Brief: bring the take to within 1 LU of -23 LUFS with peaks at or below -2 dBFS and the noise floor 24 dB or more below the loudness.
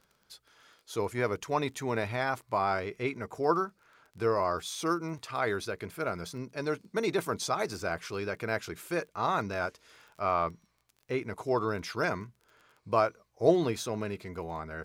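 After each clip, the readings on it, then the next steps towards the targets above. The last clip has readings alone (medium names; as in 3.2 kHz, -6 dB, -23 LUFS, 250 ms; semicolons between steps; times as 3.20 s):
tick rate 19 per s; loudness -32.0 LUFS; peak level -10.0 dBFS; loudness target -23.0 LUFS
-> de-click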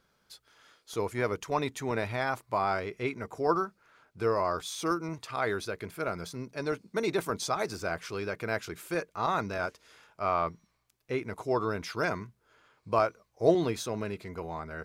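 tick rate 0.067 per s; loudness -32.0 LUFS; peak level -10.0 dBFS; loudness target -23.0 LUFS
-> trim +9 dB; peak limiter -2 dBFS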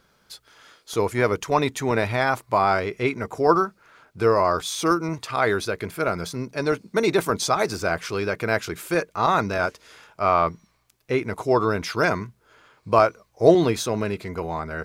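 loudness -23.0 LUFS; peak level -2.0 dBFS; noise floor -64 dBFS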